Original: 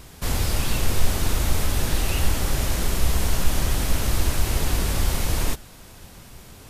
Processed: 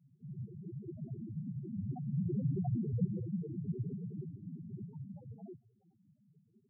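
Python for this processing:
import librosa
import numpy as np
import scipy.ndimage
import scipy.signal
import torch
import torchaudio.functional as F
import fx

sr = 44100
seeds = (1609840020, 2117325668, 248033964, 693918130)

y = fx.doppler_pass(x, sr, speed_mps=10, closest_m=5.1, pass_at_s=2.67)
y = fx.noise_vocoder(y, sr, seeds[0], bands=6)
y = fx.spec_topn(y, sr, count=2)
y = F.gain(torch.from_numpy(y), 5.5).numpy()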